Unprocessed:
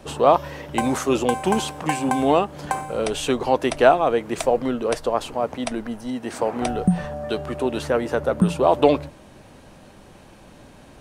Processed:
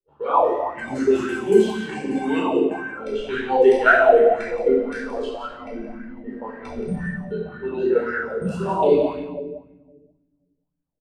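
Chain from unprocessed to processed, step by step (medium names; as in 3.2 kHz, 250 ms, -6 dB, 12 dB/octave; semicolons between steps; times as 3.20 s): level-controlled noise filter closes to 600 Hz, open at -15 dBFS; spectral noise reduction 14 dB; gate -46 dBFS, range -28 dB; hum notches 50/100/150/200/250/300 Hz; level held to a coarse grid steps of 12 dB; on a send: delay 174 ms -9 dB; on the sum: simulated room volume 840 m³, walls mixed, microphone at 4.4 m; sweeping bell 1.9 Hz 390–1700 Hz +16 dB; trim -8.5 dB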